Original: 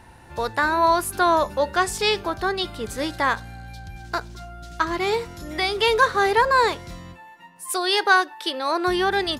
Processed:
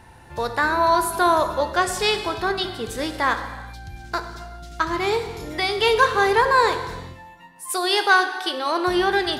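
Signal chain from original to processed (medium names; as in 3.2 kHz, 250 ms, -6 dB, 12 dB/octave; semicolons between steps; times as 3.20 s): gated-style reverb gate 440 ms falling, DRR 7.5 dB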